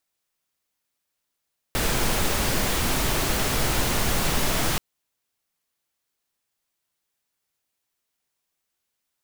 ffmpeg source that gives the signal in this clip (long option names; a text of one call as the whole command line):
ffmpeg -f lavfi -i "anoisesrc=color=pink:amplitude=0.363:duration=3.03:sample_rate=44100:seed=1" out.wav